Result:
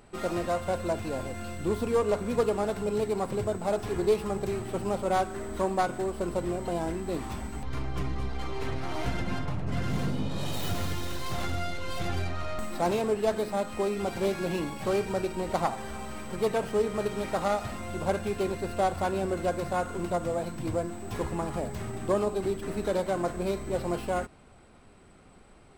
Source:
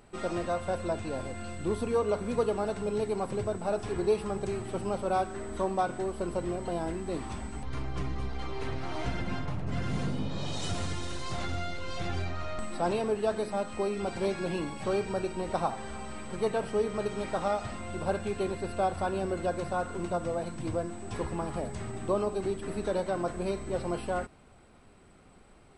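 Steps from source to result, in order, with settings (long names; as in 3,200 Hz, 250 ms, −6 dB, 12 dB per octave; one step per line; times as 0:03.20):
stylus tracing distortion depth 0.14 ms
level +2 dB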